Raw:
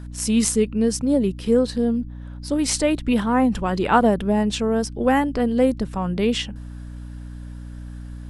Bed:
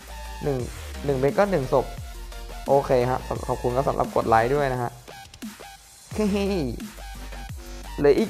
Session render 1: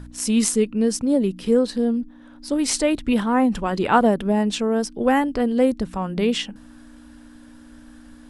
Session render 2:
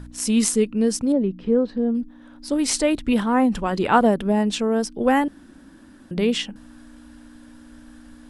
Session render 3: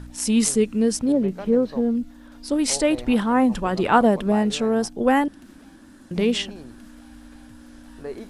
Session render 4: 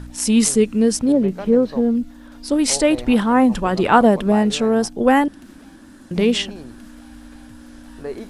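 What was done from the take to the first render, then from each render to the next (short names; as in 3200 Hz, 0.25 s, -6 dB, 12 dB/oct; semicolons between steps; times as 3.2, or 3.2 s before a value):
de-hum 60 Hz, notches 3
1.12–1.95 tape spacing loss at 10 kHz 35 dB; 5.28–6.11 room tone
add bed -16.5 dB
gain +4 dB; limiter -2 dBFS, peak gain reduction 1.5 dB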